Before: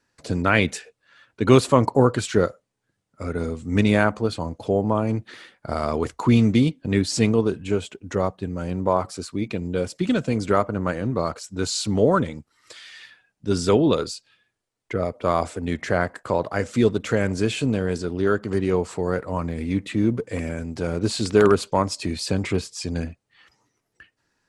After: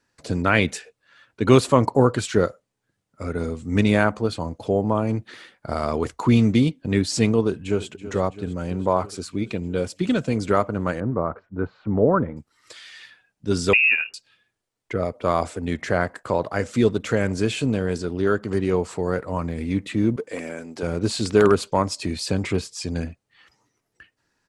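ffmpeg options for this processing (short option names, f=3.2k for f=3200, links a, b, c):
-filter_complex "[0:a]asplit=2[a][b];[b]afade=t=in:st=7.47:d=0.01,afade=t=out:st=7.87:d=0.01,aecho=0:1:330|660|990|1320|1650|1980|2310|2640|2970|3300|3630:0.199526|0.149645|0.112234|0.0841751|0.0631313|0.0473485|0.0355114|0.0266335|0.0199752|0.0149814|0.011236[c];[a][c]amix=inputs=2:normalize=0,asettb=1/sr,asplit=3[d][e][f];[d]atrim=end=11.004[g];[e]atrim=start=11:end=12.37,asetpts=PTS-STARTPTS,afade=t=in:d=0.004:c=qsin,afade=t=out:st=1.366:d=0.004:c=qsin,lowpass=f=1.6k:w=0.5412,lowpass=f=1.6k:w=1.3066[h];[f]atrim=start=12.366[i];[g][h]acrossfade=d=0.004:c1=hsin:c2=qsin[j];[j][i]acrossfade=d=0.004:c1=qsin:c2=hsin,asettb=1/sr,asplit=3[k][l][m];[k]atrim=end=13.734[n];[l]atrim=start=13.73:end=14.14,asetpts=PTS-STARTPTS,afade=t=in:d=0.004:c=qsin,afade=t=out:st=0.406:d=0.004:c=qsin,lowpass=f=2.5k:t=q:w=0.5098,lowpass=f=2.5k:t=q:w=0.6013,lowpass=f=2.5k:t=q:w=0.9,lowpass=f=2.5k:t=q:w=2.563,afreqshift=-2900[o];[m]atrim=start=14.136[p];[n][o]acrossfade=d=0.004:c1=hsin:c2=qsin[q];[q][p]acrossfade=d=0.004:c1=qsin:c2=hsin,asettb=1/sr,asplit=3[r][s][t];[r]atrim=end=20.164[u];[s]atrim=start=20.16:end=20.83,asetpts=PTS-STARTPTS,afade=t=in:d=0.004:c=qsin,afade=t=out:st=0.666:d=0.004:c=qsin,highpass=300[v];[t]atrim=start=20.826[w];[u][v]acrossfade=d=0.004:c1=hsin:c2=qsin[x];[x][w]acrossfade=d=0.004:c1=qsin:c2=hsin"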